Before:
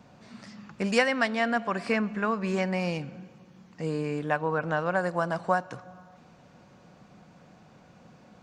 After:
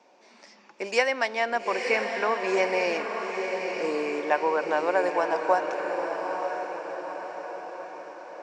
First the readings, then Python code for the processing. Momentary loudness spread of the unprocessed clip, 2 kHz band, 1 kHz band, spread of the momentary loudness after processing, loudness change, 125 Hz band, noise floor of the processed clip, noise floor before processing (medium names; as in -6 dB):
20 LU, +2.5 dB, +4.0 dB, 13 LU, +1.0 dB, under -15 dB, -56 dBFS, -56 dBFS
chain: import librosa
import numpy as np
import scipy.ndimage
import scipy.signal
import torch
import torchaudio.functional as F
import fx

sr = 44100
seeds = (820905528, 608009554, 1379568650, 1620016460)

y = fx.cabinet(x, sr, low_hz=320.0, low_slope=24, high_hz=8600.0, hz=(360.0, 560.0, 900.0, 1300.0, 2300.0, 5600.0), db=(6, 4, 7, -4, 6, 7))
y = fx.rider(y, sr, range_db=10, speed_s=2.0)
y = fx.echo_diffused(y, sr, ms=908, feedback_pct=55, wet_db=-5.0)